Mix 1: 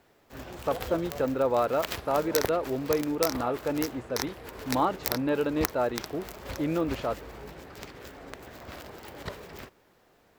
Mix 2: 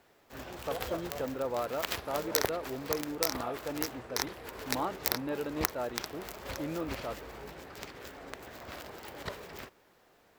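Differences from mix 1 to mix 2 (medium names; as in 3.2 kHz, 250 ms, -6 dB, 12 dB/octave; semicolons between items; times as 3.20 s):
speech -8.5 dB; background: add bass shelf 340 Hz -5 dB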